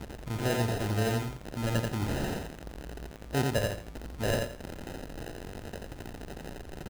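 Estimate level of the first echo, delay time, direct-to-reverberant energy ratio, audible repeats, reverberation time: -3.0 dB, 86 ms, no reverb, 3, no reverb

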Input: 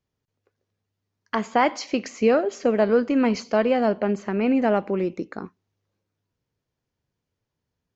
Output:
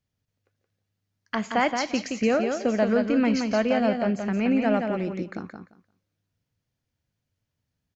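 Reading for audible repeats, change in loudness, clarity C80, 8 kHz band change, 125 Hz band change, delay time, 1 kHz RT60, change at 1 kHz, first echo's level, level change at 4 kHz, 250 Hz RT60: 2, -2.0 dB, no reverb, no reading, +0.5 dB, 173 ms, no reverb, -3.0 dB, -5.5 dB, +1.0 dB, no reverb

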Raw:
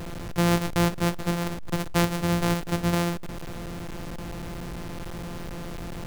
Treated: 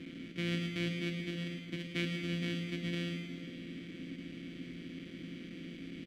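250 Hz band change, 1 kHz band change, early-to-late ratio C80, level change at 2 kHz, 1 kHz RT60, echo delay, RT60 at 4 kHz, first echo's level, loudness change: -10.5 dB, -27.0 dB, 5.0 dB, -8.0 dB, 2.1 s, 106 ms, 2.0 s, -10.0 dB, -11.0 dB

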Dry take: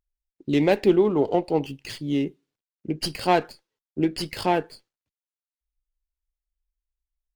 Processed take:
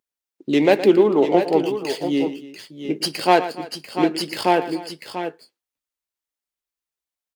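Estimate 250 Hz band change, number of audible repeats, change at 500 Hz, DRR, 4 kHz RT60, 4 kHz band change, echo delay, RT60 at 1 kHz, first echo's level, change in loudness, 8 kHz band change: +4.0 dB, 3, +5.5 dB, no reverb, no reverb, +6.0 dB, 116 ms, no reverb, -13.5 dB, +4.0 dB, +6.0 dB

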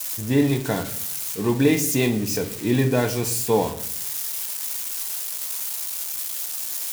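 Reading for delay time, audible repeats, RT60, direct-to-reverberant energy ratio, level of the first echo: no echo, no echo, 0.60 s, 5.0 dB, no echo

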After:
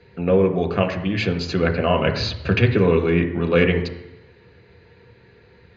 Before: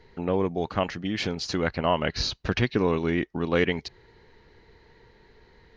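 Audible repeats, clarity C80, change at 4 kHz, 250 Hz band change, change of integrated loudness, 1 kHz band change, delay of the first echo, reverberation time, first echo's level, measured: no echo, 12.5 dB, +2.5 dB, +6.5 dB, +7.0 dB, +3.0 dB, no echo, 0.85 s, no echo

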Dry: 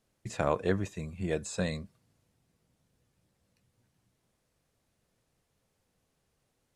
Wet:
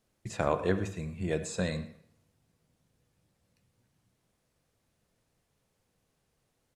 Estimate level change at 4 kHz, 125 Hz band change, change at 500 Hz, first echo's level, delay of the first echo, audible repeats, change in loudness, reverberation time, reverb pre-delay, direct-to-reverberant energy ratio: +0.5 dB, +0.5 dB, +0.5 dB, -17.0 dB, 107 ms, 1, +0.5 dB, 0.65 s, 34 ms, 9.5 dB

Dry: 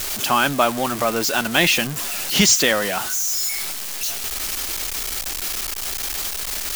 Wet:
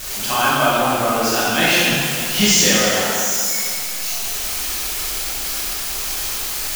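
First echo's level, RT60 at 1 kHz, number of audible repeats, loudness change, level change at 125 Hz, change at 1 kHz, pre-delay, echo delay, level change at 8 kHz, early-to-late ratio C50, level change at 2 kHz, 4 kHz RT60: no echo, 2.2 s, no echo, +2.5 dB, +3.5 dB, +3.5 dB, 7 ms, no echo, +2.5 dB, -4.0 dB, +2.5 dB, 2.0 s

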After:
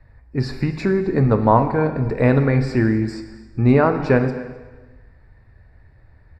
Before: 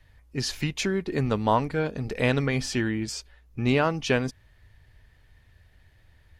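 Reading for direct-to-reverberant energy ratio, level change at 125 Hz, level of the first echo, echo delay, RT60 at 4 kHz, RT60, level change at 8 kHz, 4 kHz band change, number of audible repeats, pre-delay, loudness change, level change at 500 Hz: 7.0 dB, +10.0 dB, -20.0 dB, 259 ms, 1.2 s, 1.3 s, under -10 dB, -7.5 dB, 1, 4 ms, +8.0 dB, +8.5 dB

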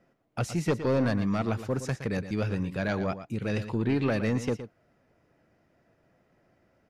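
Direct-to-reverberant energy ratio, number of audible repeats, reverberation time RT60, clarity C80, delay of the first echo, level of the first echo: no reverb, 1, no reverb, no reverb, 116 ms, -11.5 dB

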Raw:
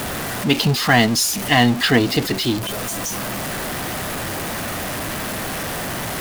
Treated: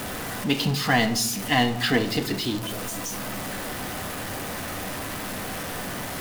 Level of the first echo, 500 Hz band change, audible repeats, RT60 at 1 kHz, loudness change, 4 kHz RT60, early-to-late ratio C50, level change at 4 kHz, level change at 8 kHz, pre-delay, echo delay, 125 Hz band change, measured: no echo, -6.0 dB, no echo, 0.75 s, -6.5 dB, 0.45 s, 13.0 dB, -6.5 dB, -6.5 dB, 4 ms, no echo, -7.0 dB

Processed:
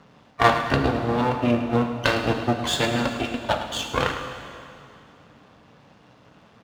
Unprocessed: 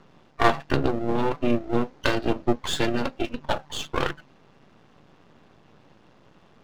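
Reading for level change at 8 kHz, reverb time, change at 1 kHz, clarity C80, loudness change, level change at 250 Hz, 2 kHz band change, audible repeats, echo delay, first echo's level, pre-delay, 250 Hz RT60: +4.0 dB, 2.6 s, +4.0 dB, 6.5 dB, +3.0 dB, +2.0 dB, +4.5 dB, 2, 106 ms, -12.0 dB, 6 ms, 2.5 s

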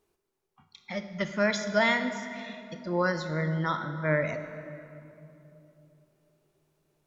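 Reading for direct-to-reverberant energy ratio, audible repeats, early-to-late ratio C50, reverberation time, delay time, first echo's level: 8.5 dB, no echo, 9.0 dB, 3.0 s, no echo, no echo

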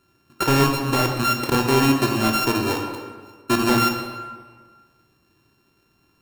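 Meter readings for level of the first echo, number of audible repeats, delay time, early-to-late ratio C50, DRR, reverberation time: no echo, no echo, no echo, 4.5 dB, 2.5 dB, 1.5 s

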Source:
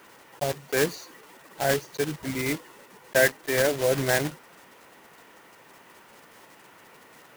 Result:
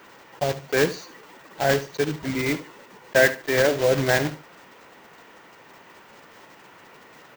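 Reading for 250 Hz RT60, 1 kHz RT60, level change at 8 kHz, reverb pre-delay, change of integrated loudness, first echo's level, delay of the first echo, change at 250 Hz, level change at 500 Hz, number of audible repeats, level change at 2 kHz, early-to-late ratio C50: no reverb, no reverb, -1.5 dB, no reverb, +3.0 dB, -14.5 dB, 72 ms, +4.0 dB, +3.5 dB, 2, +3.5 dB, no reverb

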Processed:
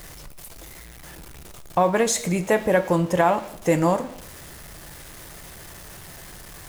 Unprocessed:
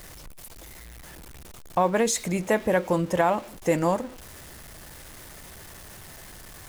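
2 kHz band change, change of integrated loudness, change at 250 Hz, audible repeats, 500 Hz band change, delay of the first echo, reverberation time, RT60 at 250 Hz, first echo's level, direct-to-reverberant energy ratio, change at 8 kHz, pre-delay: +3.0 dB, +3.0 dB, +3.0 dB, no echo, +3.0 dB, no echo, 0.65 s, 0.80 s, no echo, 10.0 dB, +3.0 dB, 3 ms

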